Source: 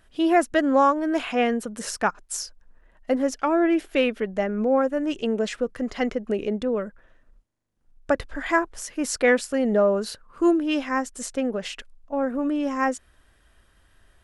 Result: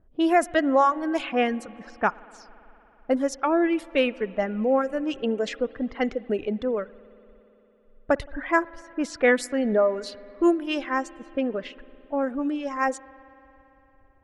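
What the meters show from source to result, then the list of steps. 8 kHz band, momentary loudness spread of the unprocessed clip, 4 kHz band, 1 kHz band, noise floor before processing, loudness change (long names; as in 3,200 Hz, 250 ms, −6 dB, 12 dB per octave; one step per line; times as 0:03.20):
−8.5 dB, 11 LU, −2.0 dB, −0.5 dB, −61 dBFS, −1.0 dB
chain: low-pass that shuts in the quiet parts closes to 560 Hz, open at −18.5 dBFS
reverb reduction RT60 1.6 s
spring reverb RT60 3.7 s, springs 56 ms, chirp 65 ms, DRR 19.5 dB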